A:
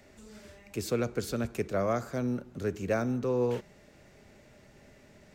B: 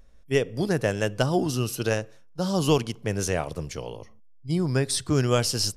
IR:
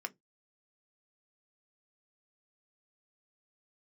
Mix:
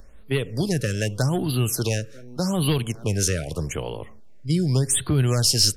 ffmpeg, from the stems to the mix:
-filter_complex "[0:a]bandreject=f=50:t=h:w=6,bandreject=f=100:t=h:w=6,bandreject=f=150:t=h:w=6,bandreject=f=200:t=h:w=6,bandreject=f=250:t=h:w=6,bandreject=f=300:t=h:w=6,volume=-10.5dB[a];[1:a]aeval=exprs='0.398*sin(PI/2*1.58*val(0)/0.398)':c=same,volume=-0.5dB,asplit=3[b][c][d];[c]volume=-14.5dB[e];[d]apad=whole_len=235699[f];[a][f]sidechaincompress=threshold=-33dB:ratio=12:attack=5.5:release=113[g];[2:a]atrim=start_sample=2205[h];[e][h]afir=irnorm=-1:irlink=0[i];[g][b][i]amix=inputs=3:normalize=0,acrossover=split=180|3000[j][k][l];[k]acompressor=threshold=-27dB:ratio=4[m];[j][m][l]amix=inputs=3:normalize=0,afftfilt=real='re*(1-between(b*sr/1024,830*pow(6900/830,0.5+0.5*sin(2*PI*0.83*pts/sr))/1.41,830*pow(6900/830,0.5+0.5*sin(2*PI*0.83*pts/sr))*1.41))':imag='im*(1-between(b*sr/1024,830*pow(6900/830,0.5+0.5*sin(2*PI*0.83*pts/sr))/1.41,830*pow(6900/830,0.5+0.5*sin(2*PI*0.83*pts/sr))*1.41))':win_size=1024:overlap=0.75"

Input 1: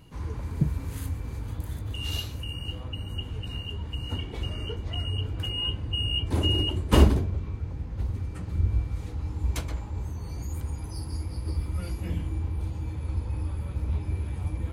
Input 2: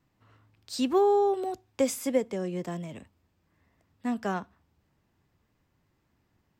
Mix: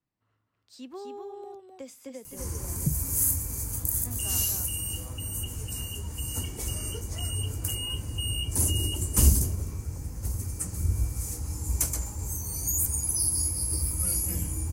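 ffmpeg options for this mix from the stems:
-filter_complex "[0:a]acrossover=split=3600[a][b];[b]acompressor=threshold=-45dB:ratio=4:attack=1:release=60[c];[a][c]amix=inputs=2:normalize=0,aexciter=amount=11.3:drive=9.4:freq=5.7k,adelay=2250,volume=-2dB,asplit=2[d][e];[e]volume=-22.5dB[f];[1:a]volume=-15.5dB,asplit=2[g][h];[h]volume=-3.5dB[i];[f][i]amix=inputs=2:normalize=0,aecho=0:1:256:1[j];[d][g][j]amix=inputs=3:normalize=0,acrossover=split=200|3000[k][l][m];[l]acompressor=threshold=-37dB:ratio=6[n];[k][n][m]amix=inputs=3:normalize=0"

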